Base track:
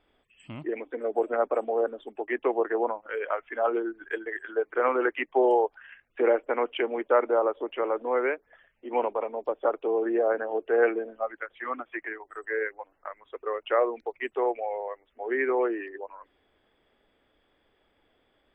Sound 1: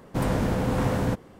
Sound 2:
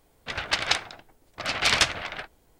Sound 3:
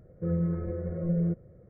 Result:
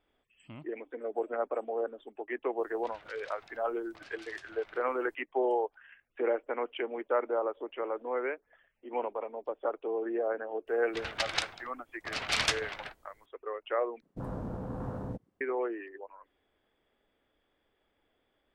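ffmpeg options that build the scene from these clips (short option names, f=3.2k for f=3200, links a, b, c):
-filter_complex "[2:a]asplit=2[a][b];[0:a]volume=-7dB[c];[a]acompressor=threshold=-45dB:ratio=6:attack=3.2:release=140:knee=1:detection=peak[d];[1:a]afwtdn=0.0251[e];[c]asplit=2[f][g];[f]atrim=end=14.024[h];[e]atrim=end=1.39,asetpts=PTS-STARTPTS,volume=-13dB[i];[g]atrim=start=15.406[j];[d]atrim=end=2.59,asetpts=PTS-STARTPTS,volume=-7dB,afade=t=in:d=0.02,afade=t=out:st=2.57:d=0.02,adelay=2570[k];[b]atrim=end=2.59,asetpts=PTS-STARTPTS,volume=-7.5dB,afade=t=in:d=0.004:c=hsin,afade=t=out:st=2.586:d=0.004:c=hsin,adelay=10670[l];[h][i]acrossfade=d=0.004:c1=hsin:c2=hsin[m];[m][j]acrossfade=d=0.004:c1=hsin:c2=hsin[n];[n][k][l]amix=inputs=3:normalize=0"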